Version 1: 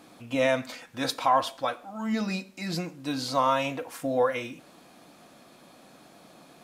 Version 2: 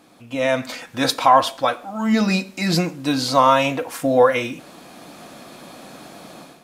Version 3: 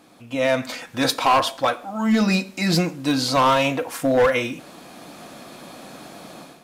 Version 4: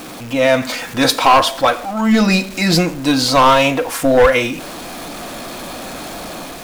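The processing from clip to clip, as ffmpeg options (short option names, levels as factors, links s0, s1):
-af "dynaudnorm=f=400:g=3:m=4.47"
-af "asoftclip=type=hard:threshold=0.237"
-af "aeval=exprs='val(0)+0.5*0.0188*sgn(val(0))':c=same,asubboost=boost=5:cutoff=59,volume=2.11"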